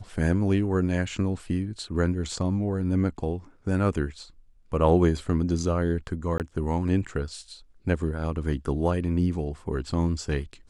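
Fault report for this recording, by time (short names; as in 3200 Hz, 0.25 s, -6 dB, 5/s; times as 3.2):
6.38–6.4 gap 18 ms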